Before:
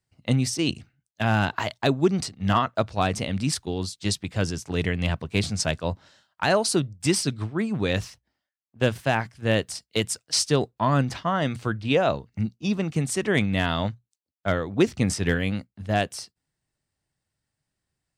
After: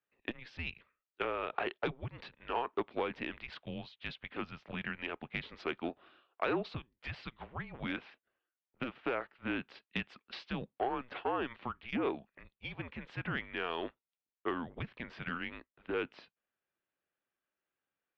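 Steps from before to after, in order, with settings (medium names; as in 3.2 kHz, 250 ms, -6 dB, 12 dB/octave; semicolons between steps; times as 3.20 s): compression 5:1, threshold -24 dBFS, peak gain reduction 9.5 dB; mistuned SSB -250 Hz 450–3400 Hz; transformer saturation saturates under 690 Hz; trim -3.5 dB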